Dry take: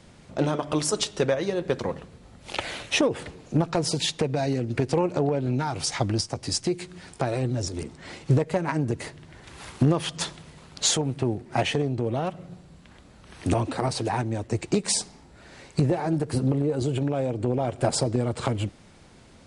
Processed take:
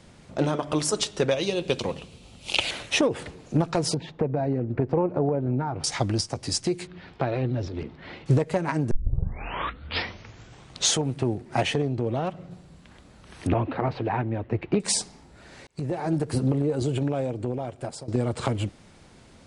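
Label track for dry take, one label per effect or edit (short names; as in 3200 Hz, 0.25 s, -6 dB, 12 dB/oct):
1.310000	2.710000	resonant high shelf 2200 Hz +6 dB, Q 3
3.940000	5.840000	LPF 1200 Hz
6.870000	8.260000	LPF 3800 Hz 24 dB/oct
8.910000	8.910000	tape start 2.07 s
11.740000	12.510000	air absorption 56 m
13.470000	14.800000	LPF 2900 Hz 24 dB/oct
15.670000	16.110000	fade in
17.070000	18.080000	fade out, to -19 dB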